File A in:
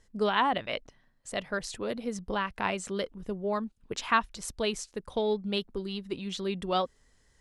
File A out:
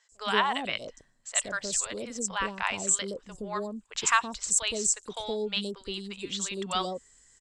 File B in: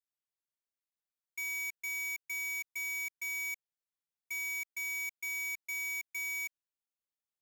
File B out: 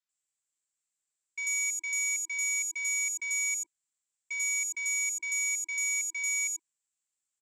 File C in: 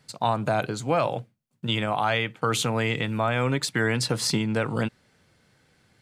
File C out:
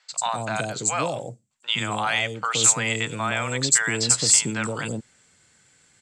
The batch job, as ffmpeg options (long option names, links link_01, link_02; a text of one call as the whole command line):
ffmpeg -i in.wav -filter_complex "[0:a]lowpass=frequency=7600:width_type=q:width=8.3,tiltshelf=frequency=770:gain=-4,acrossover=split=650|5200[link_01][link_02][link_03];[link_03]adelay=90[link_04];[link_01]adelay=120[link_05];[link_05][link_02][link_04]amix=inputs=3:normalize=0" out.wav